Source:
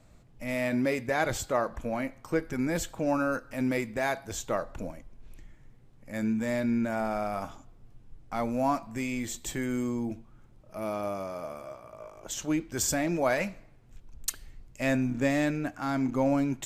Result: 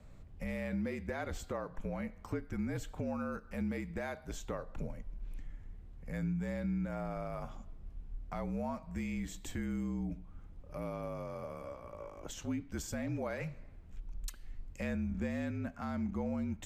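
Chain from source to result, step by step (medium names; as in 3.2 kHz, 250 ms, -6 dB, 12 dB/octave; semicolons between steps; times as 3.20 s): frequency shift -46 Hz; compression 2.5:1, threshold -41 dBFS, peak gain reduction 13 dB; tone controls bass +6 dB, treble -6 dB; trim -1 dB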